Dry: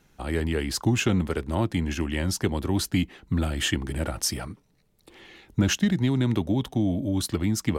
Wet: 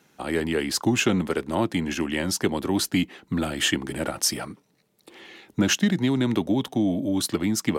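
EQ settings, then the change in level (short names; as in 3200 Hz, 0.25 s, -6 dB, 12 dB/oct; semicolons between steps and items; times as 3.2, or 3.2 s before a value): HPF 190 Hz 12 dB/oct; +3.5 dB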